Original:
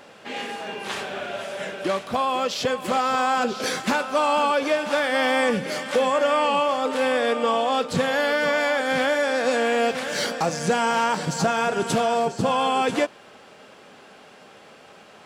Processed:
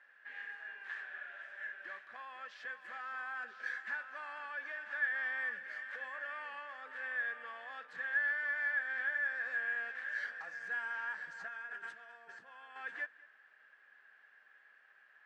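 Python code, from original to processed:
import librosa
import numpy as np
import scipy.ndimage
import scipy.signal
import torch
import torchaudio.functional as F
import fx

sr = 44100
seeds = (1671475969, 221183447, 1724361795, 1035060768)

y = fx.over_compress(x, sr, threshold_db=-29.0, ratio=-1.0, at=(11.48, 12.76))
y = 10.0 ** (-14.0 / 20.0) * np.tanh(y / 10.0 ** (-14.0 / 20.0))
y = fx.bandpass_q(y, sr, hz=1700.0, q=16.0)
y = y + 10.0 ** (-22.0 / 20.0) * np.pad(y, (int(208 * sr / 1000.0), 0))[:len(y)]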